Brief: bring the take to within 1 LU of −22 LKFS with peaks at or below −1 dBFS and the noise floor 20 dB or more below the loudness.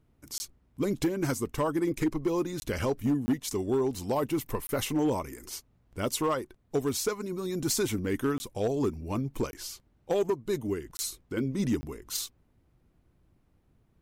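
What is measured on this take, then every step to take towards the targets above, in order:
share of clipped samples 0.6%; peaks flattened at −20.5 dBFS; number of dropouts 8; longest dropout 20 ms; integrated loudness −31.0 LKFS; sample peak −20.5 dBFS; target loudness −22.0 LKFS
→ clipped peaks rebuilt −20.5 dBFS
repair the gap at 0:00.38/0:02.60/0:03.26/0:04.67/0:08.38/0:09.51/0:10.97/0:11.81, 20 ms
level +9 dB

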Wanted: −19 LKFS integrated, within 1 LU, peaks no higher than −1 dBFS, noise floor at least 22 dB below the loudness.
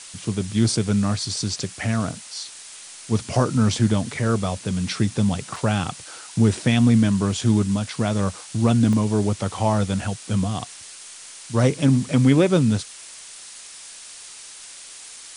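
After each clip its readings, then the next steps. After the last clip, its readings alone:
number of dropouts 2; longest dropout 2.3 ms; background noise floor −41 dBFS; target noise floor −44 dBFS; integrated loudness −21.5 LKFS; sample peak −4.5 dBFS; target loudness −19.0 LKFS
→ repair the gap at 0:05.56/0:08.93, 2.3 ms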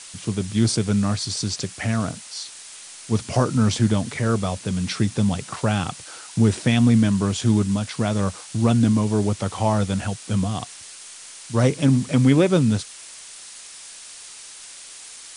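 number of dropouts 0; background noise floor −41 dBFS; target noise floor −44 dBFS
→ broadband denoise 6 dB, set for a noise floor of −41 dBFS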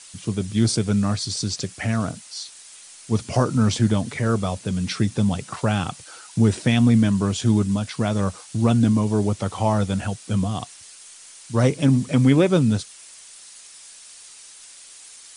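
background noise floor −45 dBFS; integrated loudness −21.5 LKFS; sample peak −4.5 dBFS; target loudness −19.0 LKFS
→ level +2.5 dB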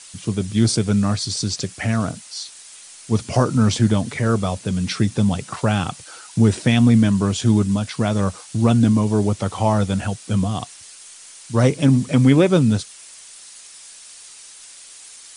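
integrated loudness −19.0 LKFS; sample peak −2.0 dBFS; background noise floor −42 dBFS

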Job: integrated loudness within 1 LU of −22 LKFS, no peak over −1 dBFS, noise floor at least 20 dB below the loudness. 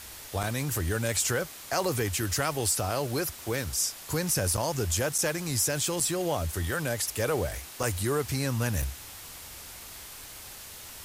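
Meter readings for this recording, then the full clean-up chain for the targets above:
number of dropouts 6; longest dropout 4.9 ms; background noise floor −45 dBFS; target noise floor −49 dBFS; integrated loudness −28.5 LKFS; sample peak −13.5 dBFS; target loudness −22.0 LKFS
→ repair the gap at 0:00.43/0:04.57/0:05.18/0:06.00/0:07.83/0:08.82, 4.9 ms
noise reduction from a noise print 6 dB
level +6.5 dB

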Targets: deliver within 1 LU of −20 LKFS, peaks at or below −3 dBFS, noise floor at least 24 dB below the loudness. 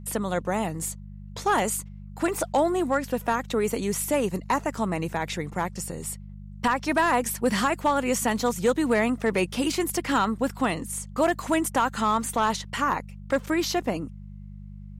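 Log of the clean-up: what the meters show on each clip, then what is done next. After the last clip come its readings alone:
share of clipped samples 0.3%; peaks flattened at −14.5 dBFS; mains hum 50 Hz; hum harmonics up to 200 Hz; level of the hum −38 dBFS; integrated loudness −26.0 LKFS; sample peak −14.5 dBFS; target loudness −20.0 LKFS
→ clipped peaks rebuilt −14.5 dBFS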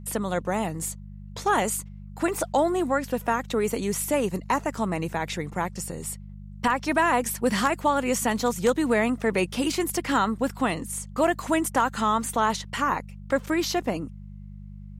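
share of clipped samples 0.0%; mains hum 50 Hz; hum harmonics up to 200 Hz; level of the hum −38 dBFS
→ hum removal 50 Hz, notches 4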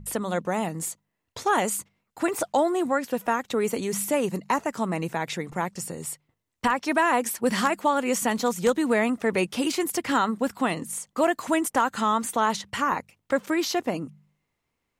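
mains hum none found; integrated loudness −26.0 LKFS; sample peak −7.0 dBFS; target loudness −20.0 LKFS
→ level +6 dB
brickwall limiter −3 dBFS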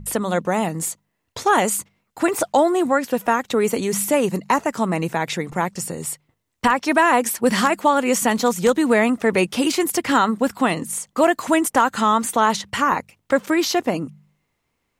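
integrated loudness −20.0 LKFS; sample peak −3.0 dBFS; background noise floor −74 dBFS

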